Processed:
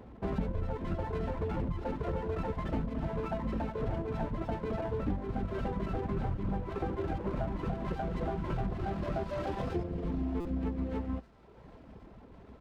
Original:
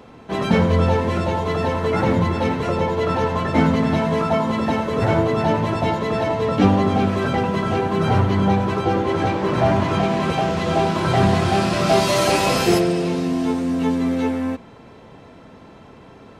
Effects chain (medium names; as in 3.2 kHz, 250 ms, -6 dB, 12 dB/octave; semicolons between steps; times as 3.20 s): octave divider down 2 oct, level +1 dB; treble shelf 2.5 kHz -3 dB; reverb removal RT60 1.2 s; tempo 1.3×; compression 10:1, threshold -23 dBFS, peak gain reduction 15 dB; tape spacing loss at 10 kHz 34 dB; on a send: feedback echo behind a high-pass 767 ms, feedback 75%, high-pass 1.5 kHz, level -17 dB; on the sum: buffer glitch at 10.40 s, samples 256, times 8; sliding maximum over 9 samples; trim -5.5 dB